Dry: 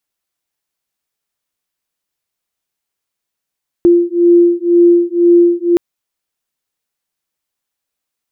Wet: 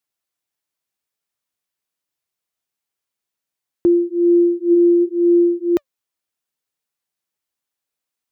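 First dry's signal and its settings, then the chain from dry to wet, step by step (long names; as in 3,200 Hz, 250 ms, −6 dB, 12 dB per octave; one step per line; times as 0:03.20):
two tones that beat 345 Hz, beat 2 Hz, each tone −9.5 dBFS 1.92 s
high-pass filter 57 Hz
flanger 0.72 Hz, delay 0.7 ms, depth 2.8 ms, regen +87%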